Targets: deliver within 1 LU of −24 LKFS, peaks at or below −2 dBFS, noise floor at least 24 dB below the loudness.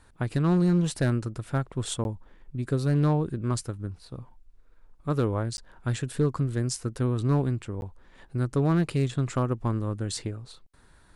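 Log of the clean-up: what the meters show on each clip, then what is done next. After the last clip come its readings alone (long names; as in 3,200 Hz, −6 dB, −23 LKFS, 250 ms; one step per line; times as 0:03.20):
share of clipped samples 0.5%; peaks flattened at −15.5 dBFS; number of dropouts 3; longest dropout 11 ms; integrated loudness −28.0 LKFS; sample peak −15.5 dBFS; target loudness −24.0 LKFS
→ clipped peaks rebuilt −15.5 dBFS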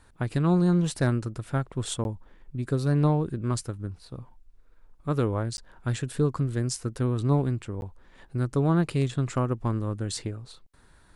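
share of clipped samples 0.0%; number of dropouts 3; longest dropout 11 ms
→ repair the gap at 0:02.04/0:05.57/0:07.81, 11 ms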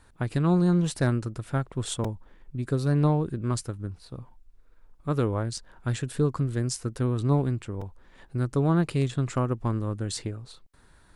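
number of dropouts 0; integrated loudness −27.5 LKFS; sample peak −10.0 dBFS; target loudness −24.0 LKFS
→ level +3.5 dB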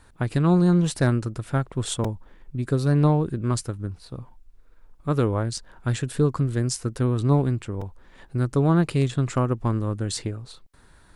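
integrated loudness −24.0 LKFS; sample peak −6.5 dBFS; background noise floor −53 dBFS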